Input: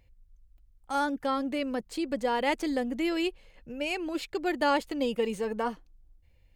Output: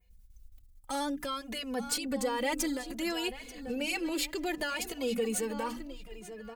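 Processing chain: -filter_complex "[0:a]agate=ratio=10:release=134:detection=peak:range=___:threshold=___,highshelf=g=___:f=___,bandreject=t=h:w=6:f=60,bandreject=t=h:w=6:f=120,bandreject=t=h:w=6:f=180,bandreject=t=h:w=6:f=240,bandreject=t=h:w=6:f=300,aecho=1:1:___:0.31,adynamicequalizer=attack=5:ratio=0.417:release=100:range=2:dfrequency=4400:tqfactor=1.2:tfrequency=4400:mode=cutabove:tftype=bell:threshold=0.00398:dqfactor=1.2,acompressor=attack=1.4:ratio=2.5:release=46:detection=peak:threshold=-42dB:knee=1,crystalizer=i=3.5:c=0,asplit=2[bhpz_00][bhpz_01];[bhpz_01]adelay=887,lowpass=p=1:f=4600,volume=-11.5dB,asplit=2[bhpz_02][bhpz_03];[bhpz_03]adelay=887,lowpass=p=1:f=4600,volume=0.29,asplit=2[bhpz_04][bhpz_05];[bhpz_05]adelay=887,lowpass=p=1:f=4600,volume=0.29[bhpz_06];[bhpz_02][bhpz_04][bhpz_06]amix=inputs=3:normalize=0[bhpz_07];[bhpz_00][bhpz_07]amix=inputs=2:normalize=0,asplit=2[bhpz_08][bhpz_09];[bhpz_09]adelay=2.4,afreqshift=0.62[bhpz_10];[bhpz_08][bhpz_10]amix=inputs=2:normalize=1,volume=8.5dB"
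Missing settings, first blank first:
-12dB, -57dB, -4.5, 7900, 4.1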